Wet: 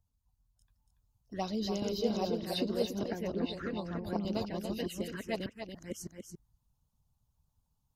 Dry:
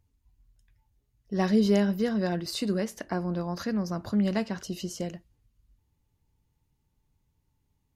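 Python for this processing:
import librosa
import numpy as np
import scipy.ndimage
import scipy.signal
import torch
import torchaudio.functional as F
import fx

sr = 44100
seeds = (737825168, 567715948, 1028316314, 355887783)

y = fx.reverse_delay(x, sr, ms=607, wet_db=0)
y = fx.lowpass(y, sr, hz=2800.0, slope=12, at=(3.05, 4.04))
y = fx.env_phaser(y, sr, low_hz=350.0, high_hz=1800.0, full_db=-22.0)
y = y + 10.0 ** (-7.0 / 20.0) * np.pad(y, (int(284 * sr / 1000.0), 0))[:len(y)]
y = fx.hpss(y, sr, part='harmonic', gain_db=-13)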